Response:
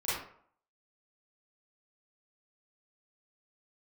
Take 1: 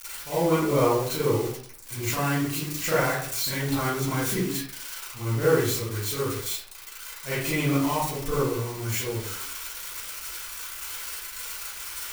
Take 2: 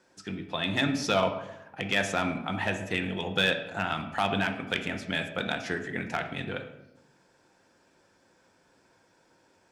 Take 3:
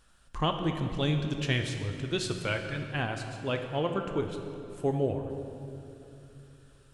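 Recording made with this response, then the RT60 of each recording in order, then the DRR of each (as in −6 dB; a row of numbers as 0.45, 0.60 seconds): 1; 0.60, 0.95, 2.9 seconds; −12.5, 5.0, 4.5 decibels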